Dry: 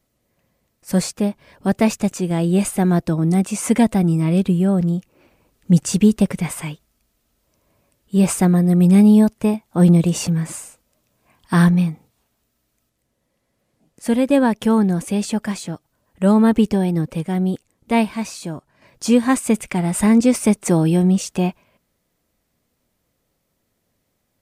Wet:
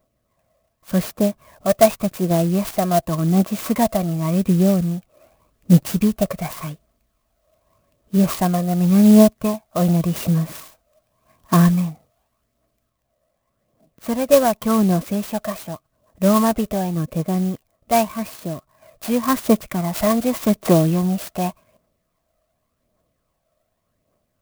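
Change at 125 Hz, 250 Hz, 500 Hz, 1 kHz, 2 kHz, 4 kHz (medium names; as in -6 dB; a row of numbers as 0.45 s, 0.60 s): -2.0 dB, -2.5 dB, +2.0 dB, +3.0 dB, -3.5 dB, 0.0 dB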